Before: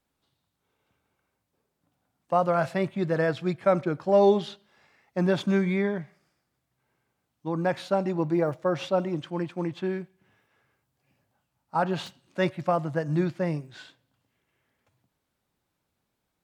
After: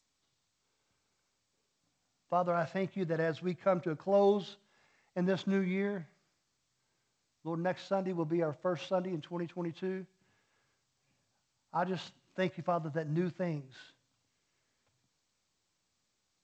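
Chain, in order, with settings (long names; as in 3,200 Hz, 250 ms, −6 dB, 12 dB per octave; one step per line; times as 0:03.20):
level −7.5 dB
G.722 64 kbit/s 16,000 Hz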